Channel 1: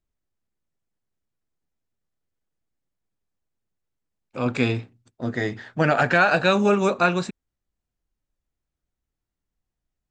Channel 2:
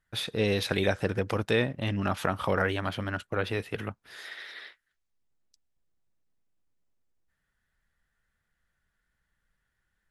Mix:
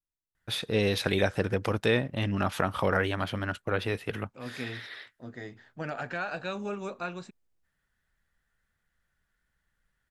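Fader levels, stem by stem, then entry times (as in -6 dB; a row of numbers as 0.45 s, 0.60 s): -16.0 dB, +0.5 dB; 0.00 s, 0.35 s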